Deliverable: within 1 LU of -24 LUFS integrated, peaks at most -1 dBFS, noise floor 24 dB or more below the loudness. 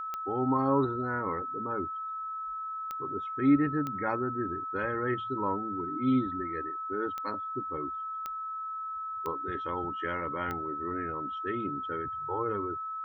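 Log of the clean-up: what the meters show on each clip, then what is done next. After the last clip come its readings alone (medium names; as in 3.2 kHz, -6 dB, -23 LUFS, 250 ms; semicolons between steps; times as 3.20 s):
clicks found 7; steady tone 1.3 kHz; tone level -34 dBFS; loudness -32.0 LUFS; peak level -14.0 dBFS; loudness target -24.0 LUFS
-> de-click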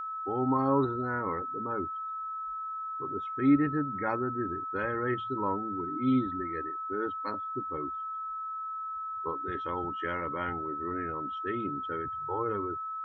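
clicks found 0; steady tone 1.3 kHz; tone level -34 dBFS
-> band-stop 1.3 kHz, Q 30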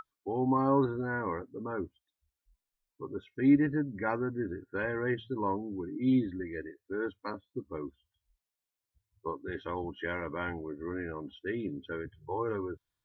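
steady tone not found; loudness -33.5 LUFS; peak level -14.0 dBFS; loudness target -24.0 LUFS
-> trim +9.5 dB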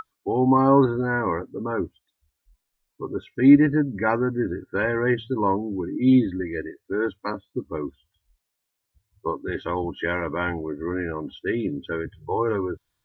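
loudness -24.0 LUFS; peak level -4.5 dBFS; noise floor -80 dBFS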